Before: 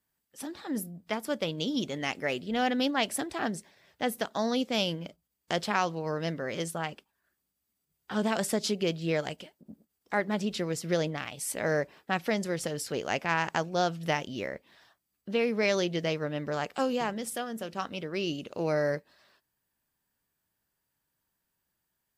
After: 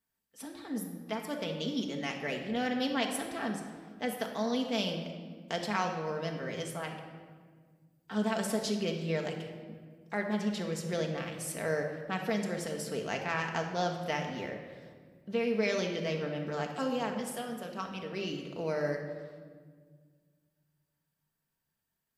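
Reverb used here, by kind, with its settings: shoebox room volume 2100 m³, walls mixed, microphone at 1.6 m; gain -6 dB

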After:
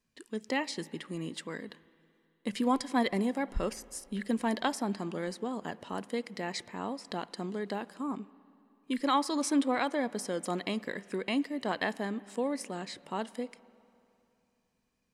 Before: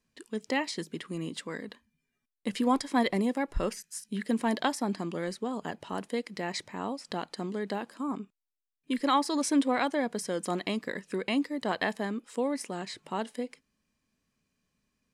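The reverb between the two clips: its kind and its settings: spring tank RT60 2.9 s, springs 50/55 ms, chirp 60 ms, DRR 19.5 dB; gain -2 dB

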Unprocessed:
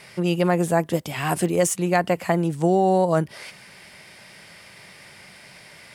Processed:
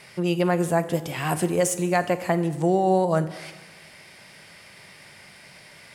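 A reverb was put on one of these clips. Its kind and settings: plate-style reverb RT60 1.3 s, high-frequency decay 0.9×, DRR 12 dB; gain -2 dB

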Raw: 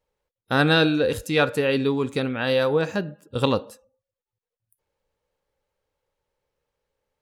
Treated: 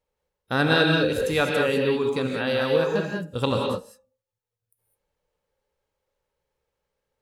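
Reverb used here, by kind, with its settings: non-linear reverb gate 0.23 s rising, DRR 1 dB; gain -3 dB

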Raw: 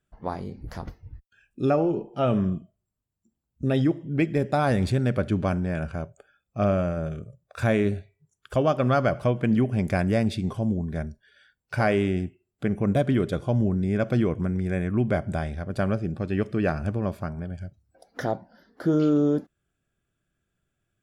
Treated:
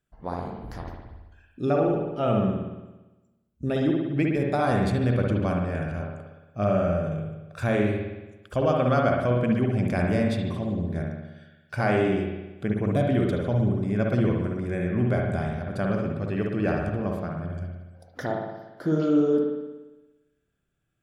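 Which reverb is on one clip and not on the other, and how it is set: spring tank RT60 1.1 s, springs 57 ms, chirp 20 ms, DRR 0 dB; gain -3 dB

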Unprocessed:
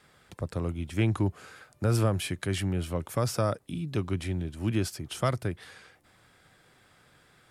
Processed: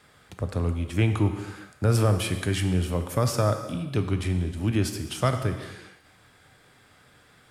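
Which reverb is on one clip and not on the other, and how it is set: non-linear reverb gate 0.44 s falling, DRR 6.5 dB; gain +3 dB

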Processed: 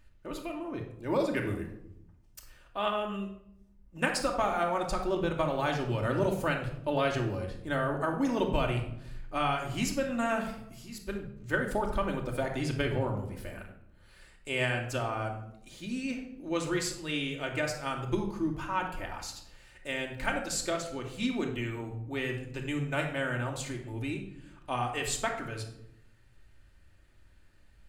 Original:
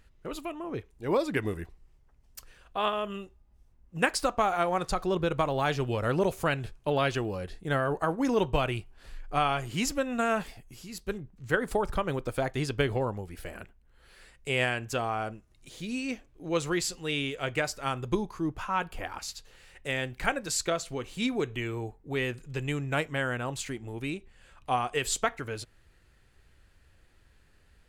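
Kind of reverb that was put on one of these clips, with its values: shoebox room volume 1900 m³, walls furnished, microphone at 2.6 m; gain -4.5 dB

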